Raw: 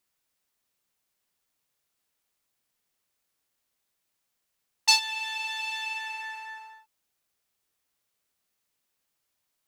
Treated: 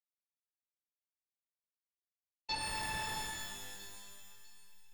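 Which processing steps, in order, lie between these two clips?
hold until the input has moved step −28.5 dBFS
downward expander −34 dBFS
in parallel at −9 dB: decimation without filtering 25×
on the sum: time stretch by overlap-add 0.51×, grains 54 ms
soft clipping −19.5 dBFS, distortion −11 dB
high-frequency loss of the air 190 metres
on a send: delay with a high-pass on its return 650 ms, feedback 44%, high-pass 2,200 Hz, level −13 dB
on the sum: reverb with rising layers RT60 1.8 s, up +12 semitones, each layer −2 dB, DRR −0.5 dB
level −6.5 dB

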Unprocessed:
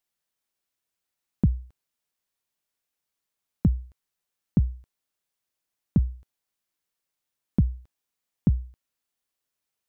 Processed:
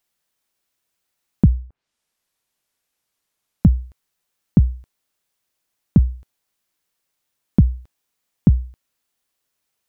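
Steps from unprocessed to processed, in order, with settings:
0:01.49–0:03.69: treble cut that deepens with the level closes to 540 Hz, closed at −30.5 dBFS
level +8 dB

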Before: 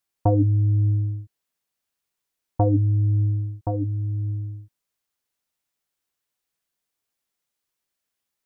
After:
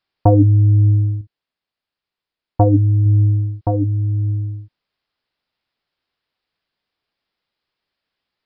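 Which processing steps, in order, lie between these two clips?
downsampling to 11,025 Hz
0:01.21–0:03.06: expander for the loud parts 1.5 to 1, over −28 dBFS
level +7.5 dB

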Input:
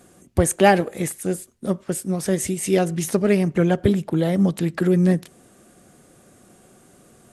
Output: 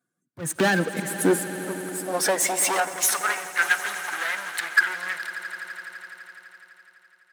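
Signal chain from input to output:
spectral dynamics exaggerated over time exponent 1.5
high-pass filter 86 Hz 6 dB per octave
parametric band 1,600 Hz +14 dB 0.64 octaves
hum removal 314.7 Hz, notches 19
downward compressor 6 to 1, threshold −27 dBFS, peak gain reduction 19.5 dB
leveller curve on the samples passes 5
volume swells 272 ms
high-pass filter sweep 140 Hz → 1,600 Hz, 0:00.53–0:03.52
echo that builds up and dies away 84 ms, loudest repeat 5, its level −17 dB
0:02.80–0:03.62: multiband upward and downward expander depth 70%
level −3 dB

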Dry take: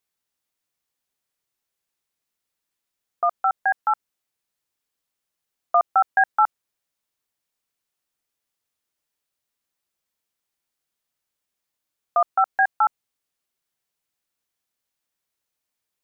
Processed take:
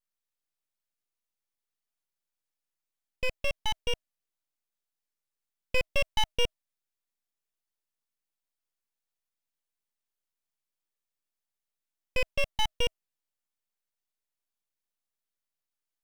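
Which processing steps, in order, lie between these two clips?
frequency shifter +310 Hz
full-wave rectification
level −6.5 dB

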